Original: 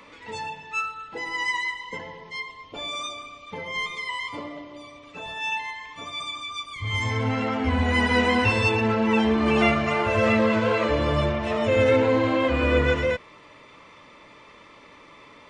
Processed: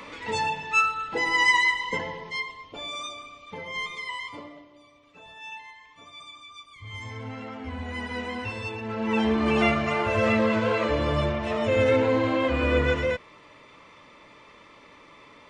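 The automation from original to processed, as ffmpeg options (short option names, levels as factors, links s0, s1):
-af "volume=6.68,afade=t=out:st=1.87:d=0.91:silence=0.334965,afade=t=out:st=4.12:d=0.6:silence=0.354813,afade=t=in:st=8.85:d=0.4:silence=0.316228"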